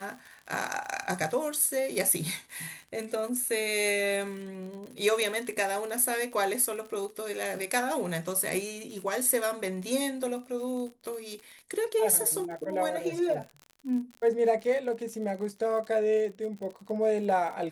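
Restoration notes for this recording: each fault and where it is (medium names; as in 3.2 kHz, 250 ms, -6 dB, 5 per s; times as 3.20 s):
crackle 43 per s -37 dBFS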